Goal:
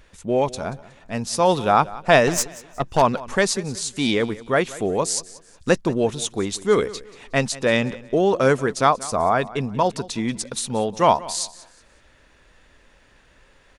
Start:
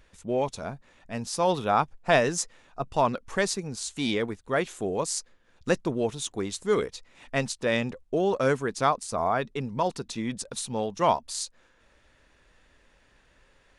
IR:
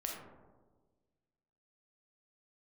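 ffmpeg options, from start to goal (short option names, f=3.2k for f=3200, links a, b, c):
-filter_complex "[0:a]asettb=1/sr,asplit=3[a][b][c];[a]atrim=end=2.274[d];[b]atrim=start=2.27:end=3.02,asetpts=PTS-STARTPTS,afade=t=in:d=0.004:c=qsin,afade=t=out:st=0.746:d=0.004:c=qsin,aeval=exprs='0.266*(cos(1*acos(clip(val(0)/0.266,-1,1)))-cos(1*PI/2))+0.0237*(cos(8*acos(clip(val(0)/0.266,-1,1)))-cos(8*PI/2))':c=same[e];[c]atrim=start=3.016[f];[d][e]acrossfade=d=0.004:c1=hsin:c2=qsin[g];[g][f]acrossfade=d=0.004:c1=qsin:c2=hsin,aecho=1:1:183|366|549:0.112|0.0348|0.0108,volume=6.5dB"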